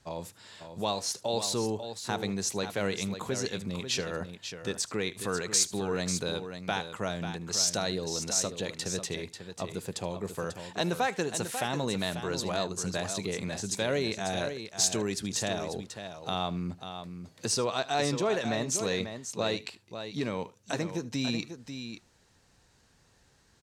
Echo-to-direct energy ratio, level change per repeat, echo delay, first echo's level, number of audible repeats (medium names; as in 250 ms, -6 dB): -8.5 dB, no regular repeats, 76 ms, -20.0 dB, 2